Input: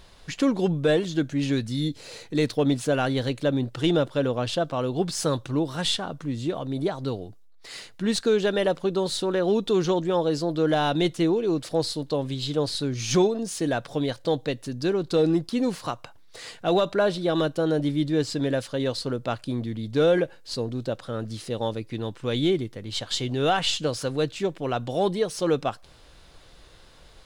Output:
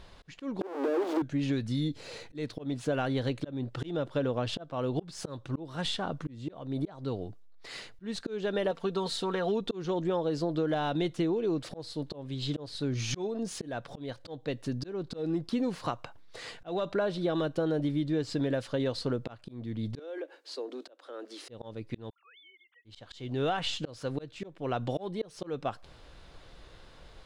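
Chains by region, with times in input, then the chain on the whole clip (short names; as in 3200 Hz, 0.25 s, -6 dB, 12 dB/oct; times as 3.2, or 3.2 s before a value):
0.61–1.22 infinite clipping + rippled Chebyshev high-pass 260 Hz, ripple 3 dB + tilt shelf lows +9.5 dB, about 1200 Hz
8.71–9.61 low shelf 460 Hz -7 dB + comb 4.4 ms, depth 61%
19.99–21.49 steep high-pass 280 Hz 72 dB/oct + compressor 2:1, threshold -38 dBFS
22.1–22.85 sine-wave speech + HPF 1200 Hz 24 dB/oct + compressor 3:1, threshold -56 dBFS
whole clip: auto swell 0.407 s; compressor, threshold -26 dBFS; LPF 3200 Hz 6 dB/oct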